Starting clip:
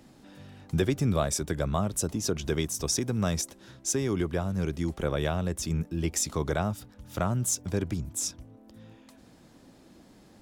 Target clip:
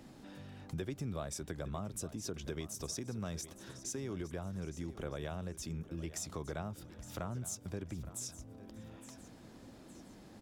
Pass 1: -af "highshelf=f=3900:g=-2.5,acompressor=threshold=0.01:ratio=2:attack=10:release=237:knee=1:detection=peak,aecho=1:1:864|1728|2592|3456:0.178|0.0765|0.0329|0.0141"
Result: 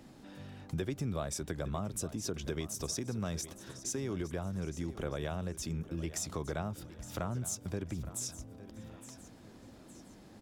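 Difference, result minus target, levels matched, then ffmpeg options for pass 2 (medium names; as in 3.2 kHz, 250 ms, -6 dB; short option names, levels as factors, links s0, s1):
compression: peak gain reduction -4 dB
-af "highshelf=f=3900:g=-2.5,acompressor=threshold=0.00398:ratio=2:attack=10:release=237:knee=1:detection=peak,aecho=1:1:864|1728|2592|3456:0.178|0.0765|0.0329|0.0141"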